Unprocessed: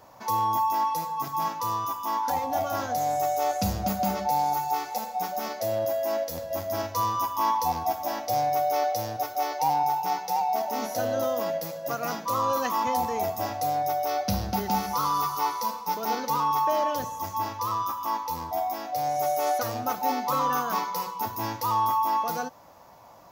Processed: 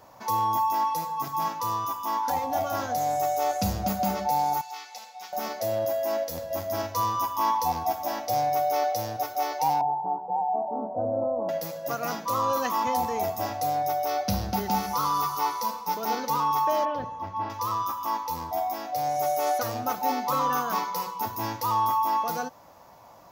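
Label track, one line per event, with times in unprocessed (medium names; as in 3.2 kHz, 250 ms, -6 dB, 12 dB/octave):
4.610000	5.330000	band-pass filter 3.5 kHz, Q 1
9.810000	11.490000	steep low-pass 930 Hz
16.850000	17.500000	distance through air 320 m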